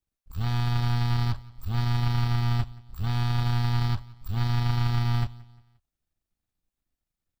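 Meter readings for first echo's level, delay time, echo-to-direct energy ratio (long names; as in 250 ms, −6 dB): −22.5 dB, 176 ms, −21.5 dB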